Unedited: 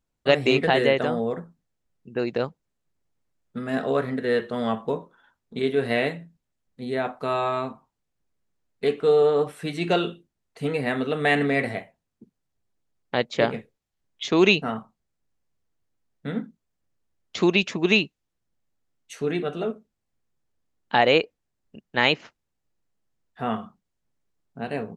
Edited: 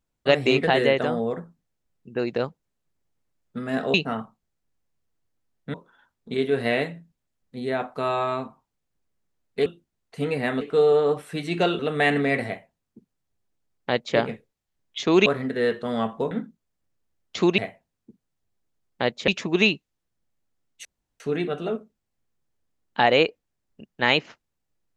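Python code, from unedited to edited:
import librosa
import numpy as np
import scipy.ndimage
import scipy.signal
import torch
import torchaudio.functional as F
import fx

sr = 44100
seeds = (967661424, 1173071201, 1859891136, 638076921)

y = fx.edit(x, sr, fx.swap(start_s=3.94, length_s=1.05, other_s=14.51, other_length_s=1.8),
    fx.move(start_s=10.09, length_s=0.95, to_s=8.91),
    fx.duplicate(start_s=11.71, length_s=1.7, to_s=17.58),
    fx.insert_room_tone(at_s=19.15, length_s=0.35), tone=tone)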